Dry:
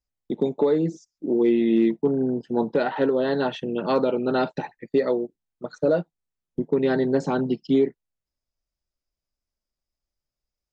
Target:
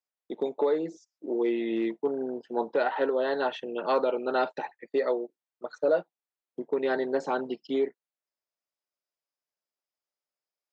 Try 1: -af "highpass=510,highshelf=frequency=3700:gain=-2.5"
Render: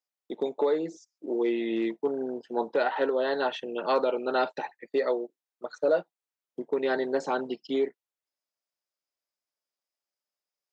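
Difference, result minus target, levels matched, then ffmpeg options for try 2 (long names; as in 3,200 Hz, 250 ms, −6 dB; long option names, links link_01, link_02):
8,000 Hz band +4.5 dB
-af "highpass=510,highshelf=frequency=3700:gain=-8.5"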